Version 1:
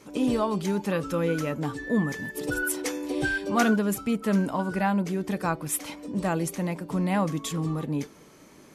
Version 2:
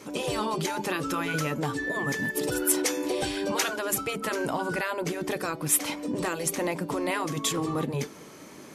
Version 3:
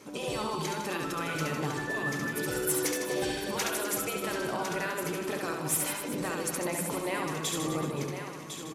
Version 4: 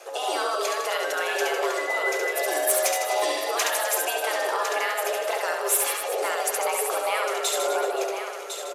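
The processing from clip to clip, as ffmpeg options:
ffmpeg -i in.wav -filter_complex "[0:a]highpass=frequency=130:poles=1,afftfilt=real='re*lt(hypot(re,im),0.251)':imag='im*lt(hypot(re,im),0.251)':win_size=1024:overlap=0.75,acrossover=split=3000[link_01][link_02];[link_01]alimiter=level_in=2dB:limit=-24dB:level=0:latency=1:release=194,volume=-2dB[link_03];[link_03][link_02]amix=inputs=2:normalize=0,volume=6.5dB" out.wav
ffmpeg -i in.wav -filter_complex "[0:a]asplit=2[link_01][link_02];[link_02]aecho=0:1:1054:0.376[link_03];[link_01][link_03]amix=inputs=2:normalize=0,volume=16.5dB,asoftclip=hard,volume=-16.5dB,asplit=2[link_04][link_05];[link_05]aecho=0:1:70|154|254.8|375.8|520.9:0.631|0.398|0.251|0.158|0.1[link_06];[link_04][link_06]amix=inputs=2:normalize=0,volume=-5.5dB" out.wav
ffmpeg -i in.wav -af "afreqshift=250,volume=6.5dB" out.wav

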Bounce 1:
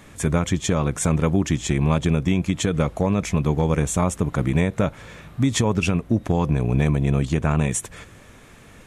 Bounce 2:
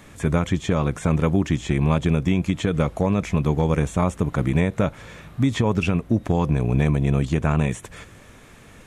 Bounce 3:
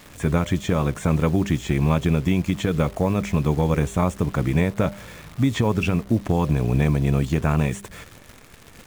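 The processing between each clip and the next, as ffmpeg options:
ffmpeg -i in.wav -filter_complex "[0:a]acrossover=split=3400[link_01][link_02];[link_02]acompressor=threshold=-39dB:ratio=4:attack=1:release=60[link_03];[link_01][link_03]amix=inputs=2:normalize=0" out.wav
ffmpeg -i in.wav -af "acrusher=bits=8:dc=4:mix=0:aa=0.000001,bandreject=frequency=199.8:width_type=h:width=4,bandreject=frequency=399.6:width_type=h:width=4,bandreject=frequency=599.4:width_type=h:width=4" out.wav

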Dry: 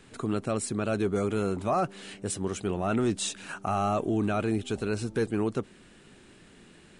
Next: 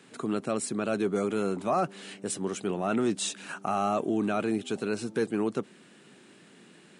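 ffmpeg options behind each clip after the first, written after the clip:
ffmpeg -i in.wav -af "highpass=frequency=150:width=0.5412,highpass=frequency=150:width=1.3066" out.wav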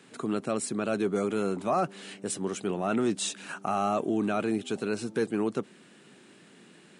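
ffmpeg -i in.wav -af anull out.wav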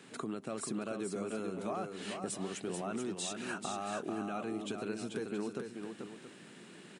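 ffmpeg -i in.wav -af "alimiter=limit=-23dB:level=0:latency=1:release=268,acompressor=threshold=-38dB:ratio=2.5,aecho=1:1:438|674:0.531|0.251" out.wav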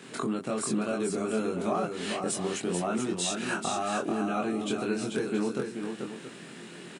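ffmpeg -i in.wav -filter_complex "[0:a]asplit=2[link_01][link_02];[link_02]adelay=23,volume=-2dB[link_03];[link_01][link_03]amix=inputs=2:normalize=0,volume=6.5dB" out.wav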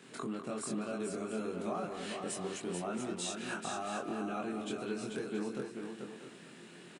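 ffmpeg -i in.wav -filter_complex "[0:a]asplit=2[link_01][link_02];[link_02]adelay=200,highpass=300,lowpass=3400,asoftclip=type=hard:threshold=-25.5dB,volume=-7dB[link_03];[link_01][link_03]amix=inputs=2:normalize=0,volume=-8.5dB" out.wav

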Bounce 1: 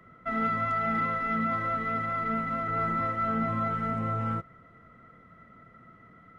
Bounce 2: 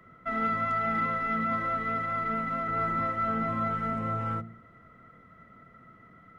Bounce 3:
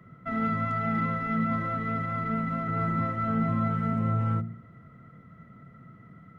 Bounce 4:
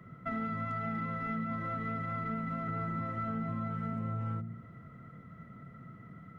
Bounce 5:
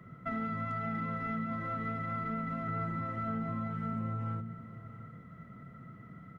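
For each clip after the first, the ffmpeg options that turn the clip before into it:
ffmpeg -i in.wav -af "bandreject=frequency=56.47:width_type=h:width=4,bandreject=frequency=112.94:width_type=h:width=4,bandreject=frequency=169.41:width_type=h:width=4,bandreject=frequency=225.88:width_type=h:width=4,bandreject=frequency=282.35:width_type=h:width=4,bandreject=frequency=338.82:width_type=h:width=4,bandreject=frequency=395.29:width_type=h:width=4,bandreject=frequency=451.76:width_type=h:width=4,bandreject=frequency=508.23:width_type=h:width=4,bandreject=frequency=564.7:width_type=h:width=4,bandreject=frequency=621.17:width_type=h:width=4,bandreject=frequency=677.64:width_type=h:width=4,bandreject=frequency=734.11:width_type=h:width=4,bandreject=frequency=790.58:width_type=h:width=4,bandreject=frequency=847.05:width_type=h:width=4" out.wav
ffmpeg -i in.wav -af "equalizer=frequency=140:width_type=o:width=1.7:gain=13.5,volume=-2.5dB" out.wav
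ffmpeg -i in.wav -af "acompressor=threshold=-33dB:ratio=6" out.wav
ffmpeg -i in.wav -af "aecho=1:1:673:0.178" out.wav

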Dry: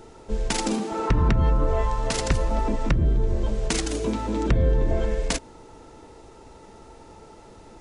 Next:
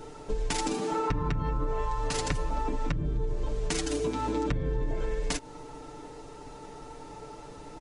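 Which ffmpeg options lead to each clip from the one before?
ffmpeg -i in.wav -af "aecho=1:1:6.8:0.75,acompressor=threshold=-27dB:ratio=4" out.wav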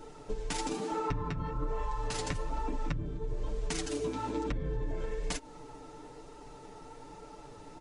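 ffmpeg -i in.wav -af "flanger=delay=3:depth=9.3:regen=-35:speed=1.1:shape=triangular,volume=-1dB" out.wav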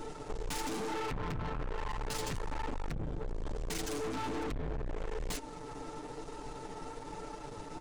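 ffmpeg -i in.wav -af "aeval=exprs='(tanh(141*val(0)+0.55)-tanh(0.55))/141':channel_layout=same,volume=8dB" out.wav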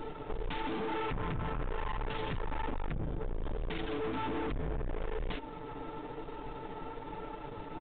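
ffmpeg -i in.wav -af "aresample=8000,aresample=44100,volume=1.5dB" out.wav

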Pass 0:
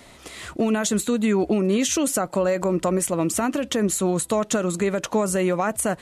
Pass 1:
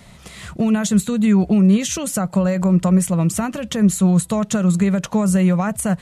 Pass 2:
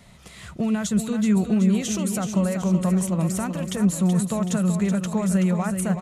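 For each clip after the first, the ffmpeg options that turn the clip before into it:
ffmpeg -i in.wav -af "lowshelf=frequency=230:width_type=q:width=3:gain=7" out.wav
ffmpeg -i in.wav -af "aecho=1:1:377|754|1131|1508|1885|2262|2639:0.398|0.219|0.12|0.0662|0.0364|0.02|0.011,volume=-6dB" out.wav

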